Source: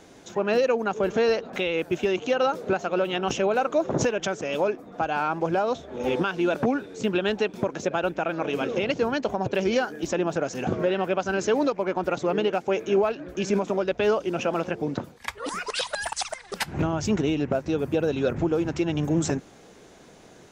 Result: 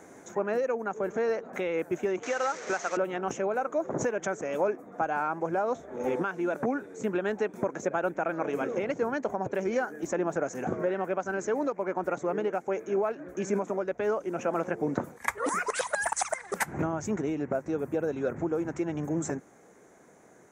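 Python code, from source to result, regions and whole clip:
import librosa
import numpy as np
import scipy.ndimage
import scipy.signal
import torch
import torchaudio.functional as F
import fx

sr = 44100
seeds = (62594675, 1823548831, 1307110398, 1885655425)

y = fx.chain(x, sr, fx.delta_mod(bps=32000, step_db=-32.0),
    fx.tilt_eq(slope=4.0),
    fx.band_squash(depth_pct=70), at=(2.23, 2.97))
y = fx.band_shelf(y, sr, hz=3700.0, db=-14.5, octaves=1.2)
y = fx.rider(y, sr, range_db=10, speed_s=0.5)
y = fx.highpass(y, sr, hz=200.0, slope=6)
y = y * librosa.db_to_amplitude(-3.5)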